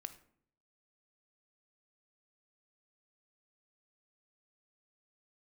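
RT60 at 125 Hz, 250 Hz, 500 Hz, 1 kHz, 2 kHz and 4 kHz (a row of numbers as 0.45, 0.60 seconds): 0.85, 0.75, 0.70, 0.55, 0.50, 0.35 seconds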